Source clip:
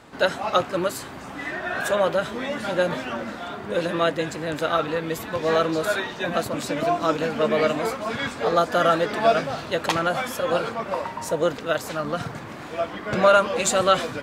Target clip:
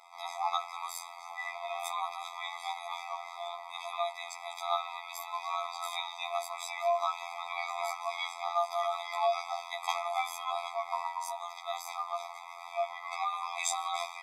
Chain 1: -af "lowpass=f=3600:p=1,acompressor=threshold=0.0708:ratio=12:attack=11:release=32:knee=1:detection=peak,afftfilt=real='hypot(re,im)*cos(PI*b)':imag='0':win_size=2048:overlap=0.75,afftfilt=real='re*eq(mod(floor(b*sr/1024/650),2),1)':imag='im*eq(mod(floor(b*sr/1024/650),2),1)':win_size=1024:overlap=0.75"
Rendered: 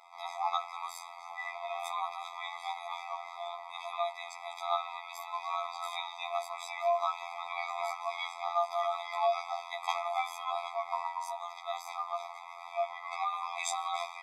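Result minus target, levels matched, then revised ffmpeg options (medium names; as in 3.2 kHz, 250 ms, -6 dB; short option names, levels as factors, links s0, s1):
8 kHz band -4.5 dB
-af "lowpass=f=13000:p=1,acompressor=threshold=0.0708:ratio=12:attack=11:release=32:knee=1:detection=peak,afftfilt=real='hypot(re,im)*cos(PI*b)':imag='0':win_size=2048:overlap=0.75,afftfilt=real='re*eq(mod(floor(b*sr/1024/650),2),1)':imag='im*eq(mod(floor(b*sr/1024/650),2),1)':win_size=1024:overlap=0.75"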